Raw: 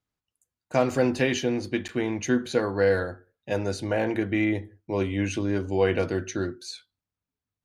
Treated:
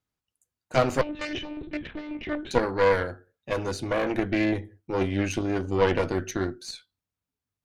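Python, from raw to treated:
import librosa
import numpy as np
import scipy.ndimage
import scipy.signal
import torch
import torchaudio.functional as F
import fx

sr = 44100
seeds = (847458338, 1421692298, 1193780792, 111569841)

y = fx.lpc_monotone(x, sr, seeds[0], pitch_hz=300.0, order=10, at=(1.01, 2.51))
y = fx.cheby_harmonics(y, sr, harmonics=(4,), levels_db=(-10,), full_scale_db=-8.5)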